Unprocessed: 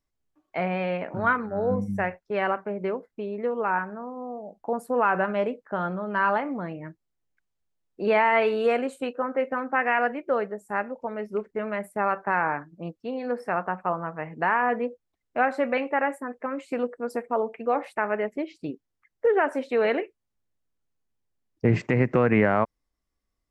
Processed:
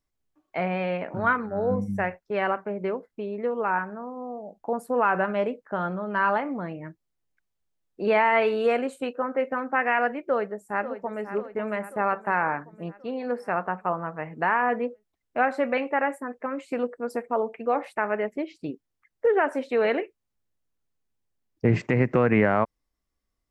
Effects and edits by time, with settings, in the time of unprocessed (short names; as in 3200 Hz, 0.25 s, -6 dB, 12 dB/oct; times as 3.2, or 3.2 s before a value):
10.19–11.25 echo throw 0.54 s, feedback 60%, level -11.5 dB